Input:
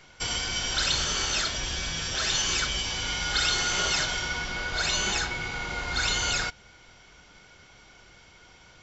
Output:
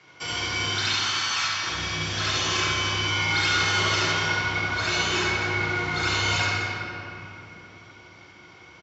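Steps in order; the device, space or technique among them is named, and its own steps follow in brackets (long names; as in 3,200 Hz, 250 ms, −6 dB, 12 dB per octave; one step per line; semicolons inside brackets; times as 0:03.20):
0:00.71–0:01.63: high-pass filter 830 Hz 24 dB per octave
high-pass filter 82 Hz
car door speaker (loudspeaker in its box 80–6,500 Hz, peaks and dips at 98 Hz +5 dB, 340 Hz +7 dB, 1,100 Hz +7 dB, 2,200 Hz +5 dB)
loudspeakers that aren't time-aligned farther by 24 metres −2 dB, 85 metres −10 dB
rectangular room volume 180 cubic metres, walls hard, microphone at 0.59 metres
level −4.5 dB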